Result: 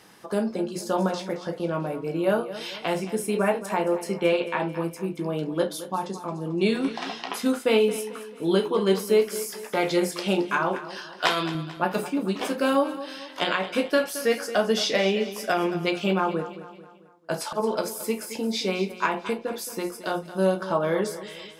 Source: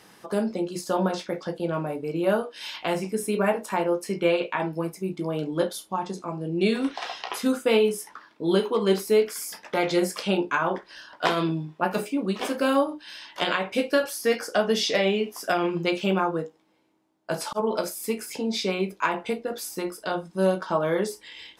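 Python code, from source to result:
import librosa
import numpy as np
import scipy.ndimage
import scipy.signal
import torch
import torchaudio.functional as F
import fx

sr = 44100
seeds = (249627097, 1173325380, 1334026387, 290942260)

y = fx.tilt_shelf(x, sr, db=-5.5, hz=970.0, at=(10.9, 11.55))
y = fx.echo_feedback(y, sr, ms=221, feedback_pct=46, wet_db=-14.0)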